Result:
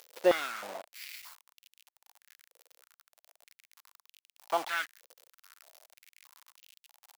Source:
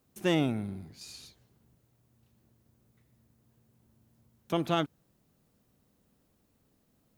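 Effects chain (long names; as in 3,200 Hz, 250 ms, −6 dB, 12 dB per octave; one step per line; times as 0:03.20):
linear delta modulator 32 kbit/s, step −39 dBFS
bit reduction 7 bits
high-pass on a step sequencer 3.2 Hz 510–2,800 Hz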